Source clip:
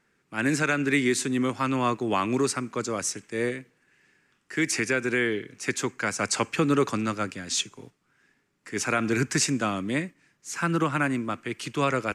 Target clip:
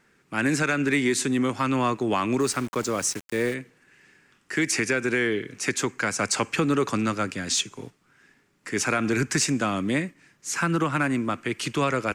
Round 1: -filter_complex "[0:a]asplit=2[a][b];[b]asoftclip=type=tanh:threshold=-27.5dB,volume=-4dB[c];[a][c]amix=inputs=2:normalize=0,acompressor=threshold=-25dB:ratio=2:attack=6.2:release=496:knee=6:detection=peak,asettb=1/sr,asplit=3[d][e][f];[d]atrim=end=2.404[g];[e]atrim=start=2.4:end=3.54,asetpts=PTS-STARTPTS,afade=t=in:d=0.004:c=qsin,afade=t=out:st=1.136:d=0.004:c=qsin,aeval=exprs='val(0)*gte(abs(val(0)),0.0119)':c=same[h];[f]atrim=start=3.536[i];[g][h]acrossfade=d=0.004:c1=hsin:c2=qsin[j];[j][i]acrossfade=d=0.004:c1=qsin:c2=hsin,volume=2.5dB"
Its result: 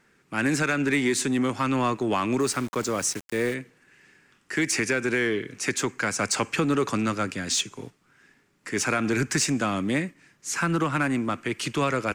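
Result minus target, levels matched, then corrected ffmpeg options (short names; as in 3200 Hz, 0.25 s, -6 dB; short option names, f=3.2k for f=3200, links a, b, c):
soft clip: distortion +9 dB
-filter_complex "[0:a]asplit=2[a][b];[b]asoftclip=type=tanh:threshold=-18dB,volume=-4dB[c];[a][c]amix=inputs=2:normalize=0,acompressor=threshold=-25dB:ratio=2:attack=6.2:release=496:knee=6:detection=peak,asettb=1/sr,asplit=3[d][e][f];[d]atrim=end=2.404[g];[e]atrim=start=2.4:end=3.54,asetpts=PTS-STARTPTS,afade=t=in:d=0.004:c=qsin,afade=t=out:st=1.136:d=0.004:c=qsin,aeval=exprs='val(0)*gte(abs(val(0)),0.0119)':c=same[h];[f]atrim=start=3.536[i];[g][h]acrossfade=d=0.004:c1=hsin:c2=qsin[j];[j][i]acrossfade=d=0.004:c1=qsin:c2=hsin,volume=2.5dB"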